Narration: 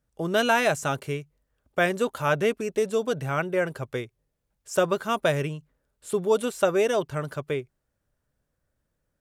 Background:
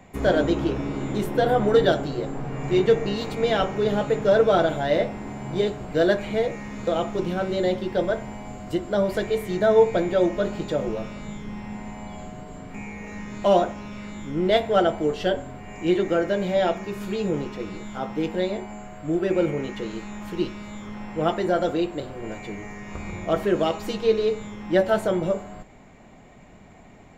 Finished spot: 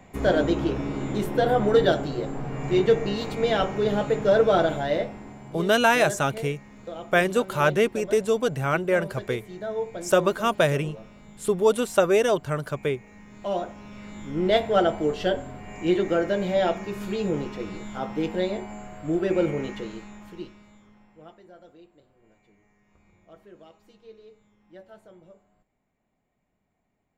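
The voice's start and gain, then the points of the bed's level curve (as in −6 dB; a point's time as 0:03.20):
5.35 s, +2.5 dB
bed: 0:04.74 −1 dB
0:05.71 −13 dB
0:13.19 −13 dB
0:14.44 −1 dB
0:19.67 −1 dB
0:21.44 −27.5 dB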